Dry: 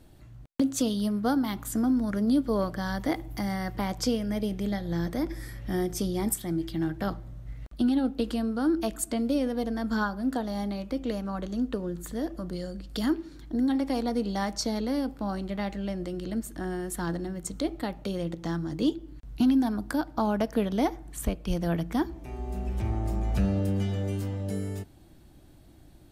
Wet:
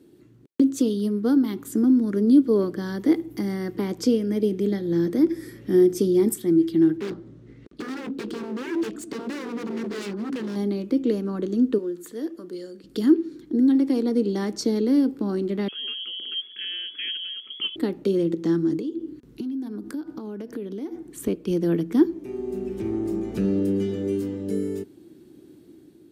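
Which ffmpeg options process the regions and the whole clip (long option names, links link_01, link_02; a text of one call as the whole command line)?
ffmpeg -i in.wav -filter_complex "[0:a]asettb=1/sr,asplit=3[link_01][link_02][link_03];[link_01]atrim=end=6.974[link_04];[link_02]atrim=start=6.97:end=10.56,asetpts=PTS-STARTPTS,afade=type=in:duration=0.004:curve=qsin,afade=type=out:start_time=3.586:duration=0.004:curve=qsin,lowpass=6200,aeval=exprs='0.0266*(abs(mod(val(0)/0.0266+3,4)-2)-1)':channel_layout=same[link_05];[link_03]atrim=start=10.556[link_06];[link_04][link_05]acrossfade=duration=0.004:curve1=hsin:curve2=qsin[link_07];[link_07][link_06]acrossfade=duration=0.004:curve1=qsin:curve2=hsin,asettb=1/sr,asplit=3[link_08][link_09][link_10];[link_08]atrim=end=11.784[link_11];[link_09]atrim=start=11.78:end=12.84,asetpts=PTS-STARTPTS,afade=type=in:duration=0.004:curve=qsin,afade=type=out:start_time=1.056:duration=0.004:curve=qsin,highpass=88,equalizer=frequency=140:width_type=o:width=2.6:gain=-14[link_12];[link_10]atrim=start=12.836[link_13];[link_11][link_12]acrossfade=duration=0.004:curve1=hsin:curve2=qsin[link_14];[link_14][link_13]acrossfade=duration=0.004:curve1=qsin:curve2=hsin,asettb=1/sr,asplit=3[link_15][link_16][link_17];[link_15]atrim=end=15.684[link_18];[link_16]atrim=start=15.68:end=17.76,asetpts=PTS-STARTPTS,afade=type=in:duration=0.004:curve=qsin,afade=type=out:start_time=2.076:duration=0.004:curve=qsin,adynamicequalizer=threshold=0.00355:dfrequency=2300:dqfactor=0.82:tfrequency=2300:tqfactor=0.82:attack=5:release=100:ratio=0.375:range=2.5:mode=cutabove:tftype=bell,lowpass=frequency=2900:width_type=q:width=0.5098,lowpass=frequency=2900:width_type=q:width=0.6013,lowpass=frequency=2900:width_type=q:width=0.9,lowpass=frequency=2900:width_type=q:width=2.563,afreqshift=-3400[link_19];[link_17]atrim=start=17.756[link_20];[link_18][link_19]acrossfade=duration=0.004:curve1=hsin:curve2=qsin[link_21];[link_21][link_20]acrossfade=duration=0.004:curve1=qsin:curve2=hsin,asettb=1/sr,asplit=3[link_22][link_23][link_24];[link_22]atrim=end=18.794[link_25];[link_23]atrim=start=18.79:end=21.01,asetpts=PTS-STARTPTS,afade=type=in:duration=0.004:curve=qsin,afade=type=out:start_time=2.216:duration=0.004:curve=qsin,bandreject=frequency=245.8:width_type=h:width=4,bandreject=frequency=491.6:width_type=h:width=4,bandreject=frequency=737.4:width_type=h:width=4,bandreject=frequency=983.2:width_type=h:width=4,bandreject=frequency=1229:width_type=h:width=4,bandreject=frequency=1474.8:width_type=h:width=4,bandreject=frequency=1720.6:width_type=h:width=4,acompressor=threshold=-36dB:ratio=20:attack=3.2:release=140:knee=1:detection=peak[link_26];[link_24]atrim=start=21.006[link_27];[link_25][link_26]acrossfade=duration=0.004:curve1=hsin:curve2=qsin[link_28];[link_28][link_27]acrossfade=duration=0.004:curve1=qsin:curve2=hsin,lowshelf=frequency=510:width_type=q:width=3:gain=9,dynaudnorm=framelen=730:gausssize=3:maxgain=4dB,highpass=250,volume=-3.5dB" out.wav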